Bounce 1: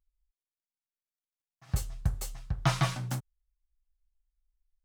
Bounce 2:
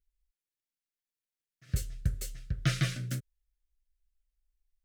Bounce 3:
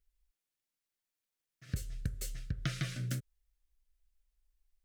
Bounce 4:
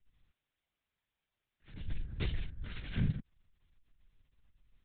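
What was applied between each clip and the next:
Chebyshev band-stop filter 500–1,600 Hz, order 2
downward compressor 6 to 1, threshold −35 dBFS, peak gain reduction 12.5 dB; level +2.5 dB
volume swells 190 ms; linear-prediction vocoder at 8 kHz whisper; level +7.5 dB

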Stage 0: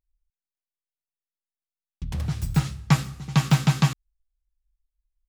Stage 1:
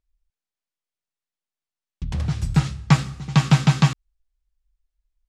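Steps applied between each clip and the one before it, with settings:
Bessel low-pass filter 7,400 Hz, order 4
level +3.5 dB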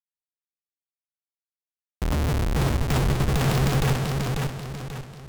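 comparator with hysteresis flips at −29.5 dBFS
feedback echo with a swinging delay time 540 ms, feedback 40%, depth 68 cents, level −3.5 dB
level +1.5 dB

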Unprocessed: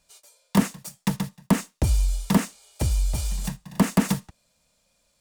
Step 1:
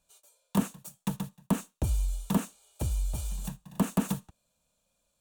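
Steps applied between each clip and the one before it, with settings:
thirty-one-band graphic EQ 2,000 Hz −11 dB, 5,000 Hz −10 dB, 16,000 Hz +5 dB
level −7 dB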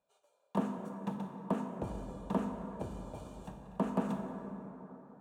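resonant band-pass 600 Hz, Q 0.87
dense smooth reverb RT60 3.9 s, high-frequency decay 0.4×, DRR 3 dB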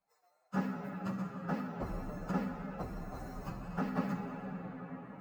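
partials spread apart or drawn together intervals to 124%
camcorder AGC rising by 8.1 dB per second
level +2 dB

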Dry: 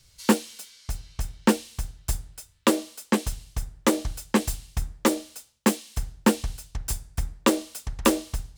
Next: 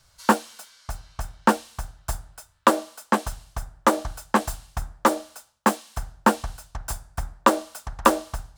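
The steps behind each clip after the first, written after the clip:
flat-topped bell 980 Hz +11.5 dB
level −2.5 dB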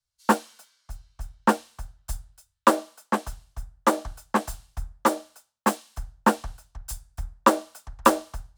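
multiband upward and downward expander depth 70%
level −4.5 dB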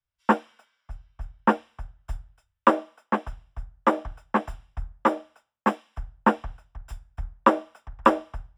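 Savitzky-Golay smoothing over 25 samples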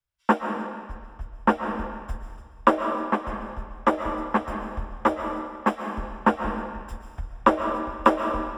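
comb and all-pass reverb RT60 1.7 s, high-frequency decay 0.9×, pre-delay 95 ms, DRR 5 dB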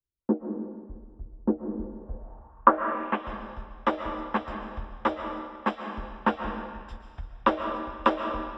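low-pass filter sweep 350 Hz → 4,000 Hz, 0:01.94–0:03.34
level −5 dB

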